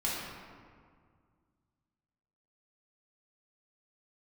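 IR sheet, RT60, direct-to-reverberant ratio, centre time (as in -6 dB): 2.0 s, -6.5 dB, 110 ms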